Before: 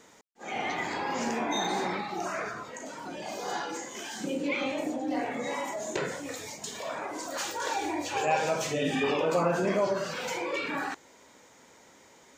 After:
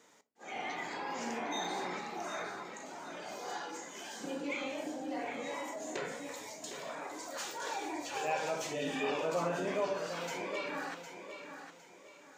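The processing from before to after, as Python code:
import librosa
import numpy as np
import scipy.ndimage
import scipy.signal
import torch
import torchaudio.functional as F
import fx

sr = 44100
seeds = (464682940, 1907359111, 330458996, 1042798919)

p1 = fx.highpass(x, sr, hz=240.0, slope=6)
p2 = p1 + fx.echo_feedback(p1, sr, ms=758, feedback_pct=33, wet_db=-9, dry=0)
p3 = fx.room_shoebox(p2, sr, seeds[0], volume_m3=170.0, walls='furnished', distance_m=0.36)
y = p3 * librosa.db_to_amplitude(-7.0)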